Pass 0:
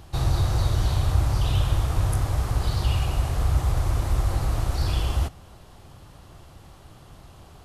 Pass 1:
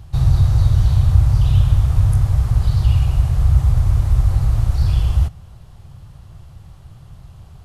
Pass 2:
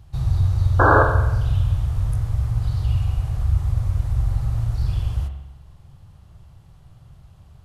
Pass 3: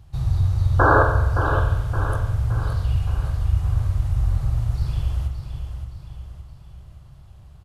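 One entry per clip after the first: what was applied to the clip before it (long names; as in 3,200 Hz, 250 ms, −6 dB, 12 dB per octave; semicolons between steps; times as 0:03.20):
low shelf with overshoot 190 Hz +10 dB, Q 1.5; level −2.5 dB
sound drawn into the spectrogram noise, 0:00.79–0:01.03, 260–1,700 Hz −7 dBFS; spring reverb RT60 1 s, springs 44 ms, chirp 40 ms, DRR 5 dB; level −8 dB
repeating echo 569 ms, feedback 48%, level −8 dB; level −1 dB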